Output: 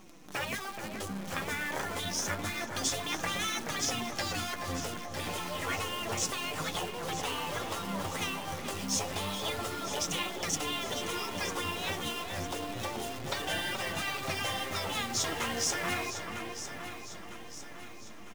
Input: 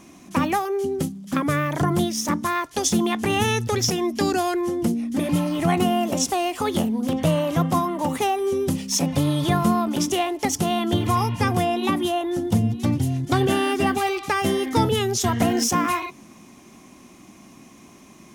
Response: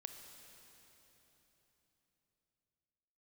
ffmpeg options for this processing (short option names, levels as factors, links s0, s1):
-filter_complex "[0:a]lowpass=7900,bandreject=f=60:t=h:w=6,bandreject=f=120:t=h:w=6,bandreject=f=180:t=h:w=6,afftfilt=real='re*lt(hypot(re,im),0.224)':imag='im*lt(hypot(re,im),0.224)':win_size=1024:overlap=0.75,acrusher=bits=7:dc=4:mix=0:aa=0.000001,asplit=2[s0][s1];[s1]adelay=427,lowpass=f=1700:p=1,volume=0.562,asplit=2[s2][s3];[s3]adelay=427,lowpass=f=1700:p=1,volume=0.46,asplit=2[s4][s5];[s5]adelay=427,lowpass=f=1700:p=1,volume=0.46,asplit=2[s6][s7];[s7]adelay=427,lowpass=f=1700:p=1,volume=0.46,asplit=2[s8][s9];[s9]adelay=427,lowpass=f=1700:p=1,volume=0.46,asplit=2[s10][s11];[s11]adelay=427,lowpass=f=1700:p=1,volume=0.46[s12];[s2][s4][s6][s8][s10][s12]amix=inputs=6:normalize=0[s13];[s0][s13]amix=inputs=2:normalize=0,flanger=delay=5.2:depth=8:regen=35:speed=0.29:shape=triangular,asplit=2[s14][s15];[s15]aecho=0:1:953|1906|2859|3812|4765:0.282|0.144|0.0733|0.0374|0.0191[s16];[s14][s16]amix=inputs=2:normalize=0"